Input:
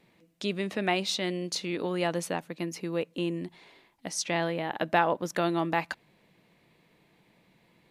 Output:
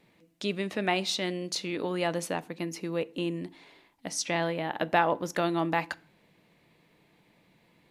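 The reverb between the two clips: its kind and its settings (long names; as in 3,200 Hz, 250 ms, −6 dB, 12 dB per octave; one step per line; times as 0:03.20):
feedback delay network reverb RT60 0.43 s, low-frequency decay 1.5×, high-frequency decay 0.75×, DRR 16.5 dB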